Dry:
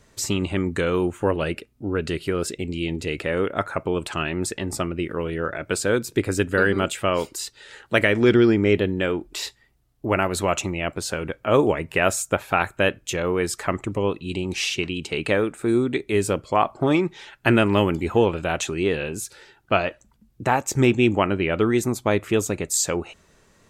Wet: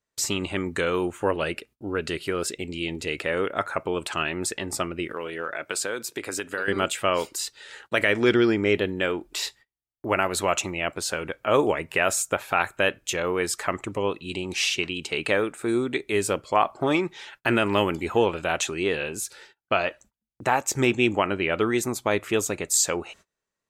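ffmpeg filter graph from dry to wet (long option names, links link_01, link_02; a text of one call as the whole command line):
ffmpeg -i in.wav -filter_complex "[0:a]asettb=1/sr,asplit=3[link_01][link_02][link_03];[link_01]atrim=end=5.134[link_04];[link_02]atrim=start=5.13:end=6.68,asetpts=PTS-STARTPTS,afade=type=in:duration=0.004:curve=qsin,afade=type=out:start_time=1.546:duration=0.004:curve=qsin,highpass=frequency=370:poles=1,acompressor=threshold=-23dB:ratio=6:attack=3.2:release=140:knee=1:detection=peak[link_05];[link_03]atrim=start=6.676[link_06];[link_04][link_05]acrossfade=duration=0.004:curve1=hsin:curve2=qsin[link_07];[link_07][link_06]acrossfade=duration=0.004:curve1=qsin:curve2=hsin,agate=range=-27dB:threshold=-48dB:ratio=16:detection=peak,lowshelf=frequency=330:gain=-10,alimiter=level_in=7.5dB:limit=-1dB:release=50:level=0:latency=1,volume=-6.5dB" out.wav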